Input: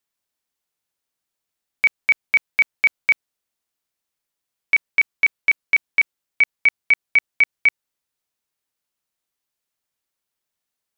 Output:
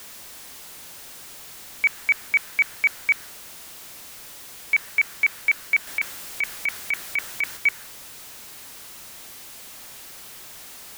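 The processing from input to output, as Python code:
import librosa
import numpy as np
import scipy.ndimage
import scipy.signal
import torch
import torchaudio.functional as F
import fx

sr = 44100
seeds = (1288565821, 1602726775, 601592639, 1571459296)

y = x + 0.5 * 10.0 ** (-28.0 / 20.0) * np.sign(x)
y = fx.over_compress(y, sr, threshold_db=-16.0, ratio=-0.5, at=(5.87, 7.57))
y = fx.dynamic_eq(y, sr, hz=1600.0, q=1.7, threshold_db=-33.0, ratio=4.0, max_db=7)
y = F.gain(torch.from_numpy(y), -7.0).numpy()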